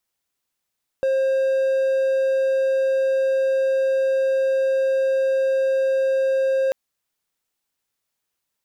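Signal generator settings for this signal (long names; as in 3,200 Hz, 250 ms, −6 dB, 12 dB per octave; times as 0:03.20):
tone triangle 533 Hz −15 dBFS 5.69 s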